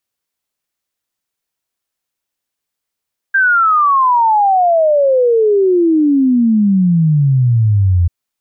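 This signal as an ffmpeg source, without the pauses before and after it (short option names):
-f lavfi -i "aevalsrc='0.398*clip(min(t,4.74-t)/0.01,0,1)*sin(2*PI*1600*4.74/log(84/1600)*(exp(log(84/1600)*t/4.74)-1))':d=4.74:s=44100"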